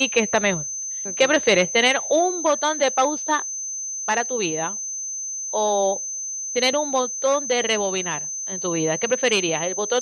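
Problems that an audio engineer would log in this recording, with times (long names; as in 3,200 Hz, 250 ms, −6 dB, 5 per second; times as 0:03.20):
whistle 6,200 Hz −27 dBFS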